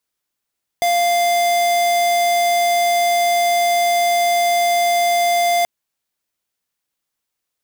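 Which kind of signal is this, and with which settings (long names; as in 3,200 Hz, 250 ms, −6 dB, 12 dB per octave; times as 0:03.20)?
tone square 696 Hz −16 dBFS 4.83 s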